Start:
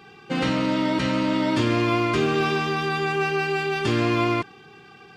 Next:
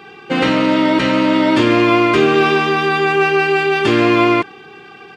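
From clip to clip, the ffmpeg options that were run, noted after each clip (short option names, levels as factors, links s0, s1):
-filter_complex "[0:a]firequalizer=gain_entry='entry(110,0);entry(330,9);entry(5000,-4)':delay=0.05:min_phase=1,acrossover=split=1900[s0][s1];[s1]acontrast=74[s2];[s0][s2]amix=inputs=2:normalize=0,volume=1.19"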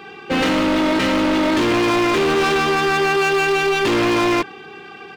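-af "equalizer=f=130:w=7:g=-7.5,asoftclip=type=hard:threshold=0.158,volume=1.12"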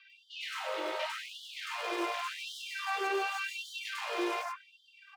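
-filter_complex "[0:a]flanger=delay=7:depth=3.8:regen=-68:speed=1.1:shape=triangular,acrossover=split=1700|5400[s0][s1][s2];[s2]adelay=100[s3];[s0]adelay=130[s4];[s4][s1][s3]amix=inputs=3:normalize=0,afftfilt=real='re*gte(b*sr/1024,320*pow(2900/320,0.5+0.5*sin(2*PI*0.88*pts/sr)))':imag='im*gte(b*sr/1024,320*pow(2900/320,0.5+0.5*sin(2*PI*0.88*pts/sr)))':win_size=1024:overlap=0.75,volume=0.355"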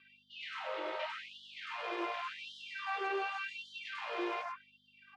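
-af "aeval=exprs='val(0)+0.001*(sin(2*PI*50*n/s)+sin(2*PI*2*50*n/s)/2+sin(2*PI*3*50*n/s)/3+sin(2*PI*4*50*n/s)/4+sin(2*PI*5*50*n/s)/5)':c=same,highpass=270,lowpass=3400,volume=0.708"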